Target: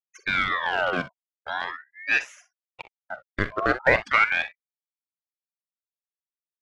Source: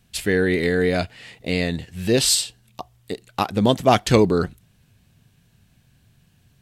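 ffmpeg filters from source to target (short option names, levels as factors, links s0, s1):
-filter_complex "[0:a]afftfilt=real='re*gte(hypot(re,im),0.0891)':imag='im*gte(hypot(re,im),0.0891)':win_size=1024:overlap=0.75,acrossover=split=500|1600[s0][s1][s2];[s1]acrusher=bits=5:dc=4:mix=0:aa=0.000001[s3];[s2]acompressor=threshold=0.0224:ratio=6[s4];[s0][s3][s4]amix=inputs=3:normalize=0,highpass=280,lowpass=2700,asplit=2[s5][s6];[s6]aecho=0:1:44|61:0.188|0.15[s7];[s5][s7]amix=inputs=2:normalize=0,aeval=exprs='val(0)*sin(2*PI*1500*n/s+1500*0.45/0.43*sin(2*PI*0.43*n/s))':c=same"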